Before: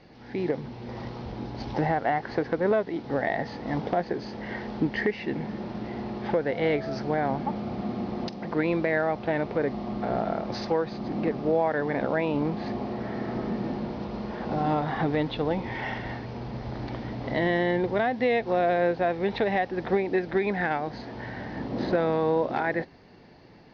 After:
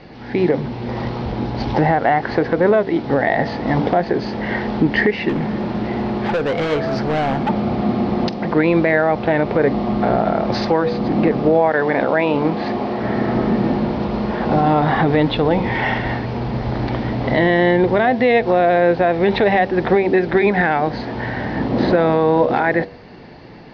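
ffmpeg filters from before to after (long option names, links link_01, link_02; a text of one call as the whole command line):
ffmpeg -i in.wav -filter_complex "[0:a]asettb=1/sr,asplit=3[link_01][link_02][link_03];[link_01]atrim=end=5.294[link_04];[link_02]atrim=start=5.29:end=7.49,asetpts=PTS-STARTPTS,afade=type=in:duration=0.004:curve=qsin,afade=type=out:start_time=2.196:duration=0.004:curve=qsin,asoftclip=type=hard:threshold=-29dB[link_05];[link_03]atrim=start=7.486[link_06];[link_04][link_05]acrossfade=duration=0.004:curve1=hsin:curve2=qsin[link_07];[link_07][link_06]acrossfade=duration=0.004:curve1=qsin:curve2=hsin,asettb=1/sr,asplit=3[link_08][link_09][link_10];[link_08]atrim=end=11.714[link_11];[link_09]atrim=start=11.71:end=13.03,asetpts=PTS-STARTPTS,afade=type=in:duration=0.004:curve=qsin,afade=type=out:start_time=1.316:duration=0.004:curve=qsin,lowshelf=frequency=200:gain=-10[link_12];[link_10]atrim=start=13.026[link_13];[link_11][link_12]acrossfade=duration=0.004:curve1=hsin:curve2=qsin[link_14];[link_14][link_13]acrossfade=duration=0.004:curve1=qsin:curve2=hsin,lowpass=4700,bandreject=frequency=96.69:width_type=h:width=4,bandreject=frequency=193.38:width_type=h:width=4,bandreject=frequency=290.07:width_type=h:width=4,bandreject=frequency=386.76:width_type=h:width=4,bandreject=frequency=483.45:width_type=h:width=4,bandreject=frequency=580.14:width_type=h:width=4,bandreject=frequency=676.83:width_type=h:width=4,alimiter=level_in=17.5dB:limit=-1dB:release=50:level=0:latency=1,volume=-4.5dB" out.wav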